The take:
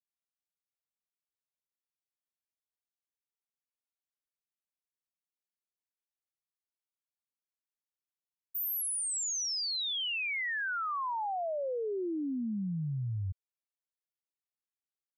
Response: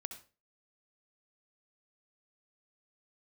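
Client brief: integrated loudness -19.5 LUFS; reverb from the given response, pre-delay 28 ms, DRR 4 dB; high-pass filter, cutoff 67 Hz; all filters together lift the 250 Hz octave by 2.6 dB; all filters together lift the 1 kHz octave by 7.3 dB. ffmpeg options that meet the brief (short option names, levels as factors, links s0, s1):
-filter_complex "[0:a]highpass=67,equalizer=f=250:t=o:g=3,equalizer=f=1000:t=o:g=9,asplit=2[s0][s1];[1:a]atrim=start_sample=2205,adelay=28[s2];[s1][s2]afir=irnorm=-1:irlink=0,volume=0.841[s3];[s0][s3]amix=inputs=2:normalize=0,volume=2.99"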